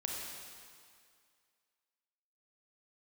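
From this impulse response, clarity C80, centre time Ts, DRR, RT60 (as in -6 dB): 1.0 dB, 111 ms, -1.5 dB, 2.1 s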